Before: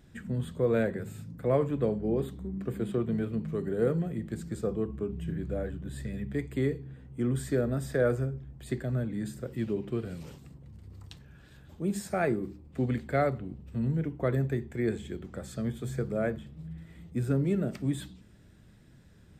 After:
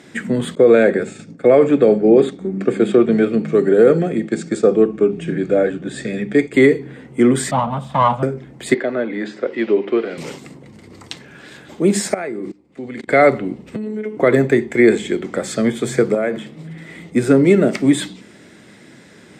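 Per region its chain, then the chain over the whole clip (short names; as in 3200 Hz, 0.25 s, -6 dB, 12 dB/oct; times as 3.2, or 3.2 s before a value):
0.55–6.54 expander -39 dBFS + LPF 8400 Hz 24 dB/oct + notch comb 1000 Hz
7.51–8.23 minimum comb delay 1.1 ms + EQ curve 210 Hz 0 dB, 360 Hz -25 dB, 530 Hz -7 dB, 1200 Hz +1 dB, 1800 Hz -24 dB, 3200 Hz -4 dB, 4900 Hz -22 dB
8.74–10.18 BPF 340–5100 Hz + air absorption 130 m
12.14–13.13 LPF 12000 Hz + level quantiser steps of 22 dB
13.76–14.17 robotiser 214 Hz + bell 420 Hz +6.5 dB 0.33 oct + compressor 5:1, threshold -38 dBFS
16.14–16.89 HPF 110 Hz + compressor 12:1, threshold -33 dBFS
whole clip: Chebyshev band-pass 300–8300 Hz, order 2; bell 2100 Hz +9 dB 0.21 oct; maximiser +21 dB; gain -1 dB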